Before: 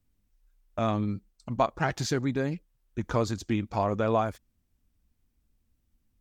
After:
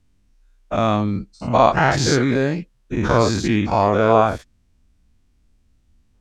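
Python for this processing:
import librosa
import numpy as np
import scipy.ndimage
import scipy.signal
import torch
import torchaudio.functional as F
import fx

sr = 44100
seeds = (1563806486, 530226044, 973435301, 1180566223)

y = fx.spec_dilate(x, sr, span_ms=120)
y = scipy.signal.sosfilt(scipy.signal.butter(2, 7800.0, 'lowpass', fs=sr, output='sos'), y)
y = y * 10.0 ** (6.5 / 20.0)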